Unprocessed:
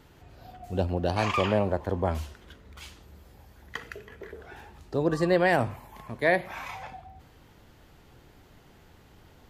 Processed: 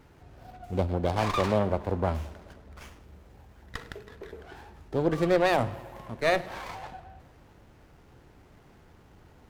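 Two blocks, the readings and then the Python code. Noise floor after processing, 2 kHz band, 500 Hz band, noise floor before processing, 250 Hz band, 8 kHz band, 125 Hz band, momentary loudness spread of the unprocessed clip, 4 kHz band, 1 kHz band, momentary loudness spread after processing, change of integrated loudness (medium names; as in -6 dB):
-56 dBFS, -3.5 dB, -0.5 dB, -56 dBFS, -0.5 dB, +1.0 dB, 0.0 dB, 21 LU, 0.0 dB, 0.0 dB, 20 LU, -0.5 dB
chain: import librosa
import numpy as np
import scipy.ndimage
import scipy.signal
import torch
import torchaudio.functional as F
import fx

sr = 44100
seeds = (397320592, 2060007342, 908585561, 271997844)

y = fx.echo_filtered(x, sr, ms=105, feedback_pct=73, hz=4300.0, wet_db=-21.0)
y = fx.running_max(y, sr, window=9)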